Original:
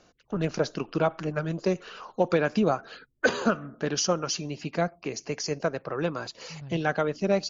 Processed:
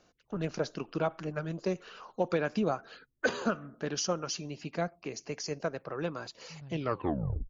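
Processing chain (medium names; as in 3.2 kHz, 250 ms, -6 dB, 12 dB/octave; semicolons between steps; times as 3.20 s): tape stop on the ending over 0.76 s; trim -6 dB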